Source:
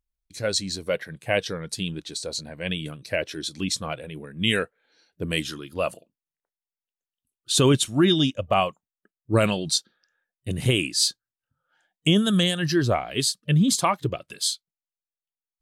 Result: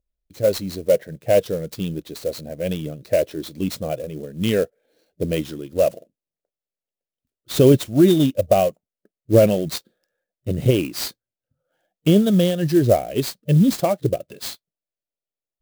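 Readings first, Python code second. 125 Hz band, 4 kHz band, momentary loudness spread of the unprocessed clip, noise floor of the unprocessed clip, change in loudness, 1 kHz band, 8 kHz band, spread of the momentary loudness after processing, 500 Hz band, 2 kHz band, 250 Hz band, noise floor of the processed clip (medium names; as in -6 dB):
+4.5 dB, -6.5 dB, 12 LU, under -85 dBFS, +4.0 dB, -0.5 dB, -6.0 dB, 14 LU, +8.5 dB, -6.0 dB, +5.0 dB, under -85 dBFS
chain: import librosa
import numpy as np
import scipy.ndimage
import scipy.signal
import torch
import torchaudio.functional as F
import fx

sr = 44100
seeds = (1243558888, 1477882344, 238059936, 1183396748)

y = fx.low_shelf_res(x, sr, hz=780.0, db=9.0, q=3.0)
y = fx.clock_jitter(y, sr, seeds[0], jitter_ms=0.026)
y = y * librosa.db_to_amplitude(-5.0)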